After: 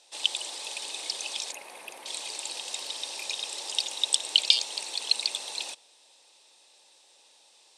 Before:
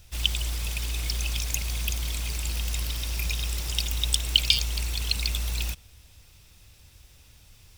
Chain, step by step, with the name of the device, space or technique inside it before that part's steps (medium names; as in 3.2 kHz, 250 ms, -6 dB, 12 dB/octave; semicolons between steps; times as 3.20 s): phone speaker on a table (cabinet simulation 360–8700 Hz, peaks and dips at 560 Hz +5 dB, 860 Hz +9 dB, 1.4 kHz -7 dB, 2.2 kHz -4 dB, 4 kHz +7 dB, 8.7 kHz +8 dB); 1.52–2.06 s: high-order bell 5.1 kHz -16 dB; trim -2 dB